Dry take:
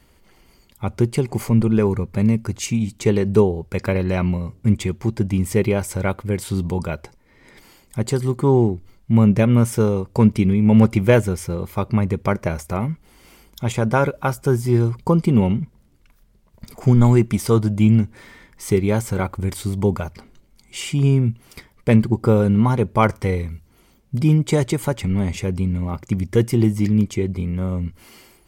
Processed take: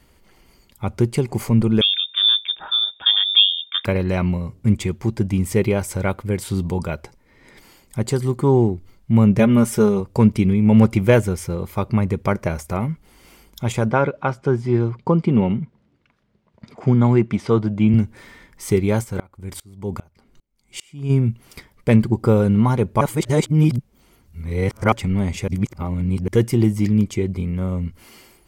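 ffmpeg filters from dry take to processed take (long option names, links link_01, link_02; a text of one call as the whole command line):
ffmpeg -i in.wav -filter_complex "[0:a]asettb=1/sr,asplit=3[link_01][link_02][link_03];[link_01]atrim=end=1.814[link_04];[link_02]atrim=start=1.81:end=3.85,asetpts=PTS-STARTPTS,afade=type=in:duration=0.004:curve=qsin,afade=type=out:start_time=2.036:duration=0.004:curve=qsin,lowpass=frequency=3100:width_type=q:width=0.5098,lowpass=frequency=3100:width_type=q:width=0.6013,lowpass=frequency=3100:width_type=q:width=0.9,lowpass=frequency=3100:width_type=q:width=2.563,afreqshift=-3700[link_05];[link_03]atrim=start=3.846[link_06];[link_04][link_05]acrossfade=duration=0.004:curve1=hsin:curve2=qsin[link_07];[link_07][link_06]acrossfade=duration=0.004:curve1=qsin:curve2=hsin,asettb=1/sr,asplit=3[link_08][link_09][link_10];[link_08]atrim=end=9.394[link_11];[link_09]atrim=start=9.39:end=10,asetpts=PTS-STARTPTS,afade=type=in:duration=0.004:curve=qsin,afade=type=out:start_time=0.606:duration=0.004:curve=qsin,aecho=1:1:4.9:0.65,atrim=end_sample=26901[link_12];[link_10]atrim=start=9.996[link_13];[link_11][link_12]acrossfade=duration=0.004:curve1=hsin:curve2=qsin[link_14];[link_14][link_13]acrossfade=duration=0.004:curve1=qsin:curve2=hsin,asettb=1/sr,asplit=3[link_15][link_16][link_17];[link_15]atrim=end=13.914[link_18];[link_16]atrim=start=13.91:end=17.94,asetpts=PTS-STARTPTS,afade=type=in:duration=0.004:curve=qsin,afade=type=out:start_time=4.026:duration=0.004:curve=qsin,highpass=120,lowpass=3400[link_19];[link_17]atrim=start=17.936[link_20];[link_18][link_19]acrossfade=duration=0.004:curve1=hsin:curve2=qsin[link_21];[link_21][link_20]acrossfade=duration=0.004:curve1=qsin:curve2=hsin,asplit=3[link_22][link_23][link_24];[link_22]afade=type=out:start_time=19.03:duration=0.02[link_25];[link_23]aeval=exprs='val(0)*pow(10,-28*if(lt(mod(-2.5*n/s,1),2*abs(-2.5)/1000),1-mod(-2.5*n/s,1)/(2*abs(-2.5)/1000),(mod(-2.5*n/s,1)-2*abs(-2.5)/1000)/(1-2*abs(-2.5)/1000))/20)':channel_layout=same,afade=type=in:start_time=19.03:duration=0.02,afade=type=out:start_time=21.09:duration=0.02[link_26];[link_24]afade=type=in:start_time=21.09:duration=0.02[link_27];[link_25][link_26][link_27]amix=inputs=3:normalize=0,asplit=5[link_28][link_29][link_30][link_31][link_32];[link_28]atrim=end=23.012[link_33];[link_29]atrim=start=23.008:end=24.922,asetpts=PTS-STARTPTS,areverse[link_34];[link_30]atrim=start=24.918:end=25.482[link_35];[link_31]atrim=start=25.478:end=26.282,asetpts=PTS-STARTPTS,areverse[link_36];[link_32]atrim=start=26.278[link_37];[link_33][link_34]acrossfade=duration=0.004:curve1=hsin:curve2=hsin[link_38];[link_38][link_35]acrossfade=duration=0.004:curve1=hsin:curve2=hsin[link_39];[link_39][link_36]acrossfade=duration=0.004:curve1=hsin:curve2=hsin[link_40];[link_40][link_37]acrossfade=duration=0.004:curve1=hsin:curve2=hsin" out.wav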